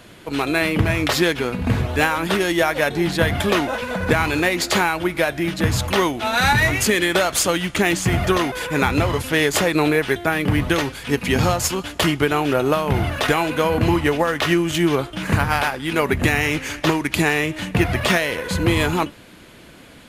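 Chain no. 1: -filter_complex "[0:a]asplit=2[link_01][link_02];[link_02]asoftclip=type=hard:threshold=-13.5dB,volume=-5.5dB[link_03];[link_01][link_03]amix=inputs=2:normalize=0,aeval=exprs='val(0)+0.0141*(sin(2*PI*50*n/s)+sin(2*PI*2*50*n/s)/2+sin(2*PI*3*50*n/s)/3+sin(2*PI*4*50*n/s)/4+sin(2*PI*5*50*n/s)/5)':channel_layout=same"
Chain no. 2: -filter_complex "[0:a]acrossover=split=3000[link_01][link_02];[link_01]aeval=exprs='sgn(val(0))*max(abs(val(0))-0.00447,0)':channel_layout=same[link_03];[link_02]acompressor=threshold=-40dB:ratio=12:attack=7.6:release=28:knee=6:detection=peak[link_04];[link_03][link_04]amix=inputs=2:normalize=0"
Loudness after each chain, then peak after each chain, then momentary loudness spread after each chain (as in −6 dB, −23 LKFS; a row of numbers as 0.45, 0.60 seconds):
−16.0, −20.5 LKFS; −2.5, −4.0 dBFS; 4, 4 LU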